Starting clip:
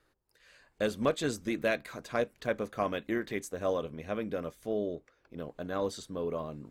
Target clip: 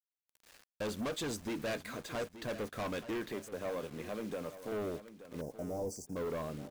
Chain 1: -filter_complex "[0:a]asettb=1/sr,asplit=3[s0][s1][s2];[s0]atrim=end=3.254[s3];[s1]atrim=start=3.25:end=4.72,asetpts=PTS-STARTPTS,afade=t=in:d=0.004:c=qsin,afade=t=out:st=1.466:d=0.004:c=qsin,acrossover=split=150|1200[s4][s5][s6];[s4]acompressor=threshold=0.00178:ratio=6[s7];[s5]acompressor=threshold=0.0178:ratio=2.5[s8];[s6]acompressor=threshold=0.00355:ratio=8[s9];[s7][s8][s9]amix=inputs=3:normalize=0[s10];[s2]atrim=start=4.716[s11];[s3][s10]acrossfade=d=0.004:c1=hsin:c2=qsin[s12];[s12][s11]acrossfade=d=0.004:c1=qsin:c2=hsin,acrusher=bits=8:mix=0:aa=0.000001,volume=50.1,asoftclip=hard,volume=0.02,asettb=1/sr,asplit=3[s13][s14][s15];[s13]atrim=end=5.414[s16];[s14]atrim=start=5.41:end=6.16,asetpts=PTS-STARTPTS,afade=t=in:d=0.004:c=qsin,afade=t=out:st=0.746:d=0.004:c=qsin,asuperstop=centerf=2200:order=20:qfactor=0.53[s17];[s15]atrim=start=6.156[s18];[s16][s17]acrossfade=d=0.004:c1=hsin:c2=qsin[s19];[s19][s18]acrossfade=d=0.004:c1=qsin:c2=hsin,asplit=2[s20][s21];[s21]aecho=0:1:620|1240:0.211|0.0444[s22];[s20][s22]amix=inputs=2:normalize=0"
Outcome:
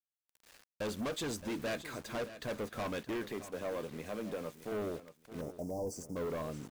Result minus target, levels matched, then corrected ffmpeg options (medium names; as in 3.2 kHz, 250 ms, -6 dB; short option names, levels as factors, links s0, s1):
echo 257 ms early
-filter_complex "[0:a]asettb=1/sr,asplit=3[s0][s1][s2];[s0]atrim=end=3.254[s3];[s1]atrim=start=3.25:end=4.72,asetpts=PTS-STARTPTS,afade=t=in:d=0.004:c=qsin,afade=t=out:st=1.466:d=0.004:c=qsin,acrossover=split=150|1200[s4][s5][s6];[s4]acompressor=threshold=0.00178:ratio=6[s7];[s5]acompressor=threshold=0.0178:ratio=2.5[s8];[s6]acompressor=threshold=0.00355:ratio=8[s9];[s7][s8][s9]amix=inputs=3:normalize=0[s10];[s2]atrim=start=4.716[s11];[s3][s10]acrossfade=d=0.004:c1=hsin:c2=qsin[s12];[s12][s11]acrossfade=d=0.004:c1=qsin:c2=hsin,acrusher=bits=8:mix=0:aa=0.000001,volume=50.1,asoftclip=hard,volume=0.02,asettb=1/sr,asplit=3[s13][s14][s15];[s13]atrim=end=5.414[s16];[s14]atrim=start=5.41:end=6.16,asetpts=PTS-STARTPTS,afade=t=in:d=0.004:c=qsin,afade=t=out:st=0.746:d=0.004:c=qsin,asuperstop=centerf=2200:order=20:qfactor=0.53[s17];[s15]atrim=start=6.156[s18];[s16][s17]acrossfade=d=0.004:c1=hsin:c2=qsin[s19];[s19][s18]acrossfade=d=0.004:c1=qsin:c2=hsin,asplit=2[s20][s21];[s21]aecho=0:1:877|1754:0.211|0.0444[s22];[s20][s22]amix=inputs=2:normalize=0"